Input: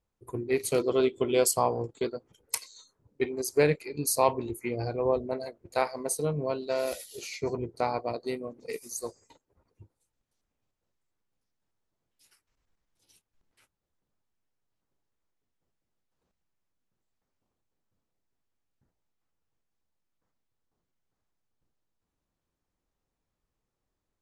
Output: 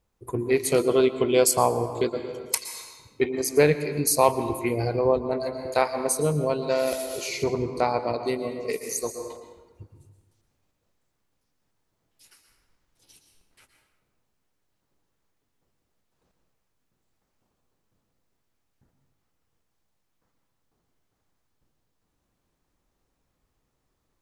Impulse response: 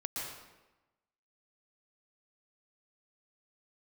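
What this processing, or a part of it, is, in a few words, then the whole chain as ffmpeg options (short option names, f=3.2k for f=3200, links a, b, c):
ducked reverb: -filter_complex "[0:a]asplit=3[a][b][c];[1:a]atrim=start_sample=2205[d];[b][d]afir=irnorm=-1:irlink=0[e];[c]apad=whole_len=1067661[f];[e][f]sidechaincompress=threshold=-37dB:ratio=4:attack=29:release=411,volume=-0.5dB[g];[a][g]amix=inputs=2:normalize=0,volume=3.5dB"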